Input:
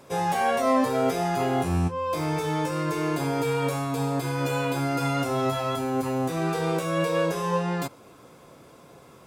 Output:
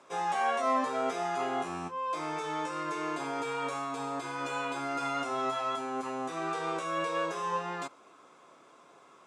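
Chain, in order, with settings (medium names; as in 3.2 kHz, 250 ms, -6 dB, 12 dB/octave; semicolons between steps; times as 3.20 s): cabinet simulation 360–8100 Hz, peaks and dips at 500 Hz -6 dB, 1.2 kHz +6 dB, 4.7 kHz -5 dB; trim -5 dB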